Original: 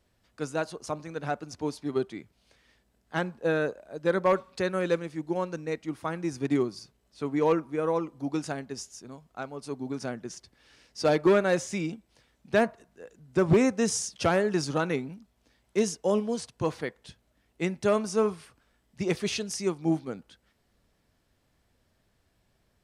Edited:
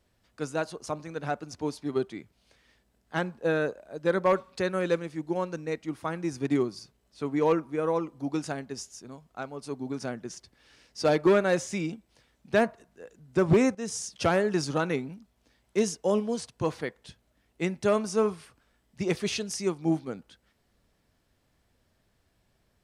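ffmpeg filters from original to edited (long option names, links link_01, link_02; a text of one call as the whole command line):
ffmpeg -i in.wav -filter_complex "[0:a]asplit=2[link_01][link_02];[link_01]atrim=end=13.75,asetpts=PTS-STARTPTS,afade=type=out:start_time=13.746:duration=0.004:curve=hsin:silence=0.223872[link_03];[link_02]atrim=start=13.75,asetpts=PTS-STARTPTS,afade=type=in:duration=0.47:silence=0.223872[link_04];[link_03][link_04]concat=n=2:v=0:a=1" out.wav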